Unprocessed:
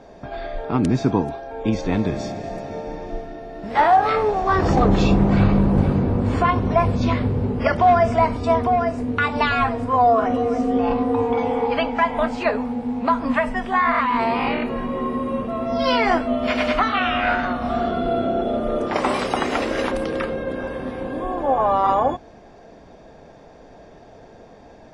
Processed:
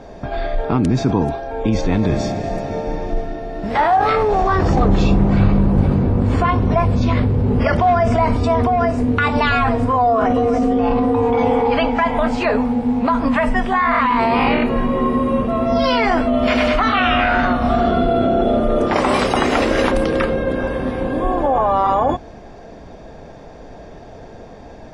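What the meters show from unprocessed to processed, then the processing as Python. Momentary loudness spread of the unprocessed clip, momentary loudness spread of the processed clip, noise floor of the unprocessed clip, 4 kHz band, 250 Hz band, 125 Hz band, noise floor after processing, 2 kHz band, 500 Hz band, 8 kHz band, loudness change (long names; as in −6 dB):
12 LU, 7 LU, −46 dBFS, +4.0 dB, +4.5 dB, +5.0 dB, −38 dBFS, +3.5 dB, +3.5 dB, can't be measured, +3.5 dB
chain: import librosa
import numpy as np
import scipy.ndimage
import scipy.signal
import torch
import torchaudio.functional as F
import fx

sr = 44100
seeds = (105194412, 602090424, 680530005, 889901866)

p1 = fx.low_shelf(x, sr, hz=110.0, db=7.0)
p2 = fx.over_compress(p1, sr, threshold_db=-21.0, ratio=-0.5)
p3 = p1 + F.gain(torch.from_numpy(p2), -1.0).numpy()
y = F.gain(torch.from_numpy(p3), -1.0).numpy()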